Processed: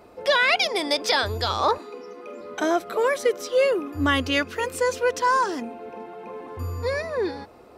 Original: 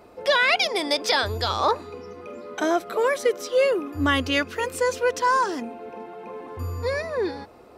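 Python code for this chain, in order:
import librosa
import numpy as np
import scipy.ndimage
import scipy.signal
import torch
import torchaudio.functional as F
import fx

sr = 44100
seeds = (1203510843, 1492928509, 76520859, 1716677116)

y = fx.highpass(x, sr, hz=230.0, slope=24, at=(1.78, 2.41))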